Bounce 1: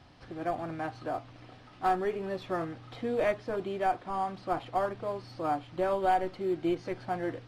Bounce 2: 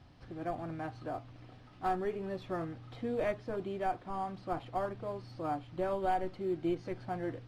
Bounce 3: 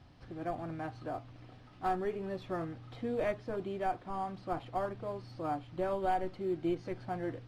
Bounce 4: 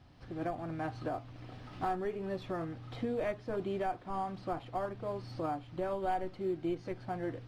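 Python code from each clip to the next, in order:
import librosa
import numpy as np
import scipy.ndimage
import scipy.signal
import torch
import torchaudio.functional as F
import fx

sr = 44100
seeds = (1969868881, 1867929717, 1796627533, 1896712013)

y1 = fx.low_shelf(x, sr, hz=260.0, db=8.0)
y1 = y1 * librosa.db_to_amplitude(-6.5)
y2 = y1
y3 = fx.recorder_agc(y2, sr, target_db=-25.0, rise_db_per_s=14.0, max_gain_db=30)
y3 = y3 * librosa.db_to_amplitude(-2.0)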